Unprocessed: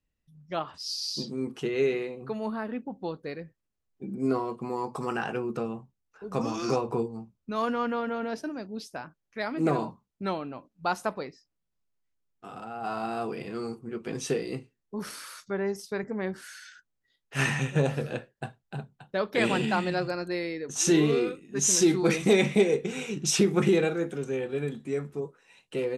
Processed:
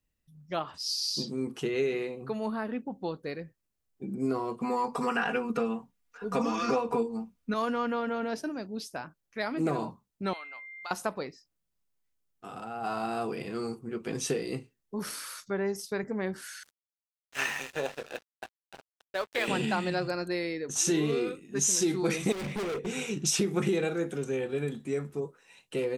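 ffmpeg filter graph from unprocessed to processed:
ffmpeg -i in.wav -filter_complex "[0:a]asettb=1/sr,asplit=3[link_01][link_02][link_03];[link_01]atrim=end=4.604[link_04];[link_02]atrim=start=4.6:end=7.54,asetpts=PTS-STARTPTS,afade=type=in:duration=0.004:curve=qsin,afade=type=out:start_time=2.936:duration=0.004:curve=qsin,acrossover=split=3400[link_05][link_06];[link_06]acompressor=threshold=-51dB:ratio=4:attack=1:release=60[link_07];[link_05][link_07]amix=inputs=2:normalize=0,equalizer=frequency=2000:width=0.67:gain=6,aecho=1:1:4.2:0.93,atrim=end_sample=129654[link_08];[link_03]atrim=start=7.536[link_09];[link_04][link_08]acrossfade=duration=0.004:curve1=hsin:curve2=qsin[link_10];[link_10][link_09]acrossfade=duration=0.004:curve1=qsin:curve2=hsin,asettb=1/sr,asplit=3[link_11][link_12][link_13];[link_11]atrim=end=10.334[link_14];[link_12]atrim=start=10.33:end=10.91,asetpts=PTS-STARTPTS,afade=type=in:duration=0.004:curve=qsin,afade=type=out:start_time=0.576:duration=0.004:curve=qsin,highpass=1300,aeval=exprs='val(0)+0.00708*sin(2*PI*2100*n/s)':channel_layout=same,acompressor=threshold=-36dB:ratio=5:attack=3.2:release=140:knee=1:detection=peak[link_15];[link_13]atrim=start=10.906[link_16];[link_14][link_15]acrossfade=duration=0.004:curve1=hsin:curve2=qsin[link_17];[link_17][link_16]acrossfade=duration=0.004:curve1=qsin:curve2=hsin,asettb=1/sr,asplit=3[link_18][link_19][link_20];[link_18]atrim=end=16.634[link_21];[link_19]atrim=start=16.63:end=19.48,asetpts=PTS-STARTPTS,afade=type=in:duration=0.004:curve=qsin,afade=type=out:start_time=2.846:duration=0.004:curve=qsin,highpass=490,lowpass=6200,aeval=exprs='sgn(val(0))*max(abs(val(0))-0.0075,0)':channel_layout=same[link_22];[link_20]atrim=start=19.476[link_23];[link_21][link_22]acrossfade=duration=0.004:curve1=hsin:curve2=qsin[link_24];[link_24][link_23]acrossfade=duration=0.004:curve1=qsin:curve2=hsin,asettb=1/sr,asplit=3[link_25][link_26][link_27];[link_25]atrim=end=22.324[link_28];[link_26]atrim=start=22.32:end=22.87,asetpts=PTS-STARTPTS,afade=type=in:duration=0.004:curve=qsin,afade=type=out:start_time=0.546:duration=0.004:curve=qsin,highshelf=frequency=3700:gain=-9,volume=31dB,asoftclip=hard,volume=-31dB[link_29];[link_27]atrim=start=22.866[link_30];[link_28][link_29]acrossfade=duration=0.004:curve1=hsin:curve2=qsin[link_31];[link_31][link_30]acrossfade=duration=0.004:curve1=qsin:curve2=hsin,highshelf=frequency=6900:gain=6.5,acompressor=threshold=-26dB:ratio=2.5" out.wav

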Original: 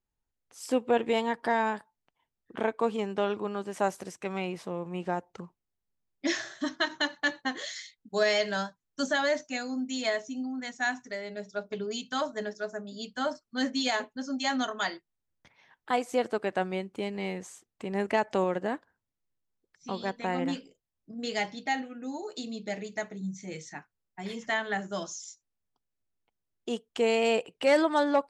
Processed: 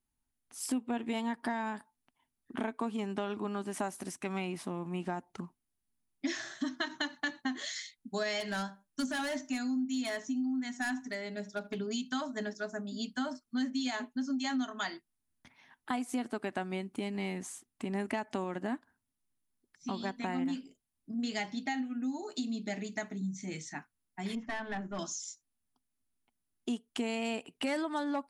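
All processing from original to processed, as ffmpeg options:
ffmpeg -i in.wav -filter_complex "[0:a]asettb=1/sr,asplit=3[link_01][link_02][link_03];[link_01]atrim=end=8.404[link_04];[link_02]atrim=start=8.4:end=11.76,asetpts=PTS-STARTPTS,afade=type=in:duration=0.004:curve=qsin,afade=type=out:start_time=3.356:duration=0.004:curve=qsin,asoftclip=type=hard:threshold=-26dB,asplit=2[link_05][link_06];[link_06]adelay=77,lowpass=frequency=1700:poles=1,volume=-18dB,asplit=2[link_07][link_08];[link_08]adelay=77,lowpass=frequency=1700:poles=1,volume=0.22[link_09];[link_05][link_07][link_09]amix=inputs=3:normalize=0,atrim=end_sample=148176[link_10];[link_03]atrim=start=11.756[link_11];[link_04][link_10]acrossfade=duration=0.004:curve1=hsin:curve2=qsin[link_12];[link_12][link_11]acrossfade=duration=0.004:curve1=qsin:curve2=hsin,asettb=1/sr,asplit=3[link_13][link_14][link_15];[link_13]atrim=end=24.354[link_16];[link_14]atrim=start=24.35:end=24.99,asetpts=PTS-STARTPTS,afade=type=in:duration=0.004:curve=qsin,afade=type=out:start_time=0.636:duration=0.004:curve=qsin,aeval=exprs='(tanh(28.2*val(0)+0.45)-tanh(0.45))/28.2':channel_layout=same,adynamicsmooth=sensitivity=1.5:basefreq=2200[link_17];[link_15]atrim=start=24.986[link_18];[link_16][link_17]acrossfade=duration=0.004:curve1=hsin:curve2=qsin[link_19];[link_19][link_18]acrossfade=duration=0.004:curve1=qsin:curve2=hsin,equalizer=frequency=250:width_type=o:width=0.33:gain=10,equalizer=frequency=500:width_type=o:width=0.33:gain=-12,equalizer=frequency=10000:width_type=o:width=0.33:gain=12,acompressor=threshold=-32dB:ratio=4" out.wav

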